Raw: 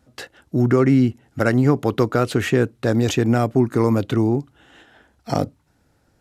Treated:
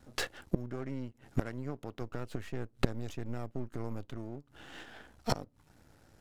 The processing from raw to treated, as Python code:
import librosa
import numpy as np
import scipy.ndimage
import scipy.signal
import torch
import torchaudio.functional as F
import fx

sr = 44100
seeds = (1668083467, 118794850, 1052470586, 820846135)

y = np.where(x < 0.0, 10.0 ** (-12.0 / 20.0) * x, x)
y = fx.low_shelf(y, sr, hz=83.0, db=10.0, at=(2.01, 4.17))
y = fx.gate_flip(y, sr, shuts_db=-17.0, range_db=-25)
y = y * librosa.db_to_amplitude(3.5)